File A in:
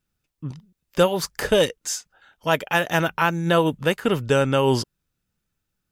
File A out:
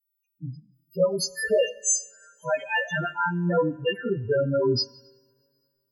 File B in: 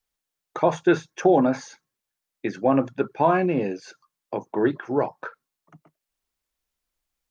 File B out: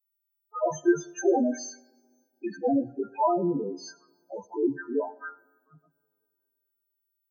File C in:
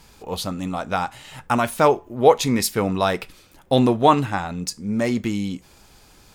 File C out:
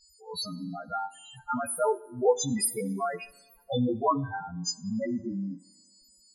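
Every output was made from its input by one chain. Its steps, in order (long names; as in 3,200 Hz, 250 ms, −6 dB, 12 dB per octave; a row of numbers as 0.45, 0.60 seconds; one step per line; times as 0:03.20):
every partial snapped to a pitch grid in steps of 2 semitones
spectral peaks only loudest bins 4
coupled-rooms reverb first 0.88 s, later 2.8 s, from −20 dB, DRR 17 dB
normalise the peak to −12 dBFS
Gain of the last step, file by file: −1.0, −2.0, −6.5 decibels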